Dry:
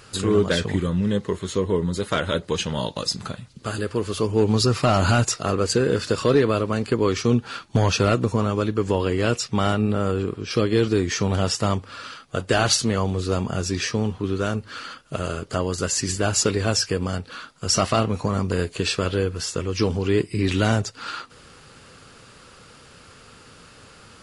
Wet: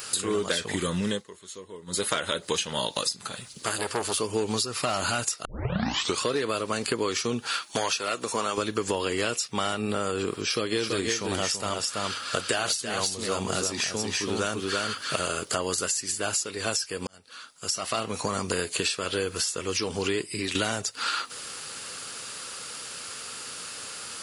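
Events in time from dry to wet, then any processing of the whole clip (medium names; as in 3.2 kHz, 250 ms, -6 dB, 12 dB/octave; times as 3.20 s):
1.09–2.01 s: dip -21.5 dB, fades 0.15 s
3.27–4.20 s: transformer saturation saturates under 990 Hz
5.45 s: tape start 0.78 s
7.47–8.58 s: high-pass 530 Hz 6 dB/octave
10.42–15.45 s: delay 333 ms -4.5 dB
17.07–18.79 s: fade in
20.02–20.55 s: fade out, to -13.5 dB
whole clip: RIAA curve recording; compression 10:1, threshold -28 dBFS; dynamic bell 6.1 kHz, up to -4 dB, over -40 dBFS, Q 1.1; trim +5 dB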